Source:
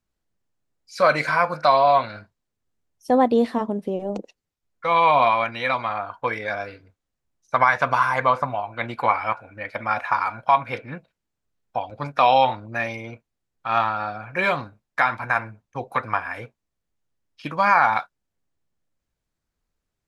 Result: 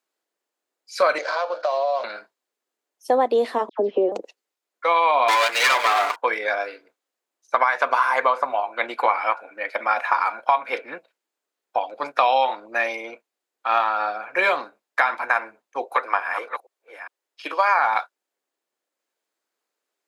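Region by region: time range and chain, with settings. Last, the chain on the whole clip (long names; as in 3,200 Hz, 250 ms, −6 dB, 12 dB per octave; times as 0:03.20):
0:01.18–0:02.04: running median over 15 samples + loudspeaker in its box 440–5,600 Hz, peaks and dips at 580 Hz +10 dB, 990 Hz −4 dB, 1,500 Hz −3 dB, 2,100 Hz −7 dB, 4,300 Hz +4 dB + downward compressor 4 to 1, threshold −25 dBFS
0:03.69–0:04.12: Butterworth low-pass 5,300 Hz 48 dB per octave + parametric band 360 Hz +7.5 dB 1.6 octaves + all-pass dispersion lows, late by 102 ms, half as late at 1,700 Hz
0:05.28–0:06.16: lower of the sound and its delayed copy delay 6.8 ms + leveller curve on the samples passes 3 + parametric band 270 Hz −6.5 dB 1.5 octaves
0:15.85–0:17.79: delay that plays each chunk backwards 409 ms, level −10 dB + high-pass filter 310 Hz 24 dB per octave
whole clip: high-pass filter 350 Hz 24 dB per octave; downward compressor 4 to 1, threshold −19 dBFS; notch filter 5,700 Hz, Q 25; level +4 dB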